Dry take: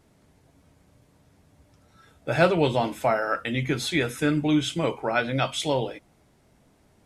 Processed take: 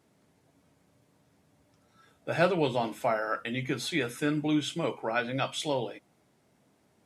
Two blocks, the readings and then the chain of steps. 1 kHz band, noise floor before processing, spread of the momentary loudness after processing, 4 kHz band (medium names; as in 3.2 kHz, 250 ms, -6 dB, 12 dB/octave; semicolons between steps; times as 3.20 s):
-5.0 dB, -62 dBFS, 6 LU, -5.0 dB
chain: high-pass 130 Hz 12 dB/octave; trim -5 dB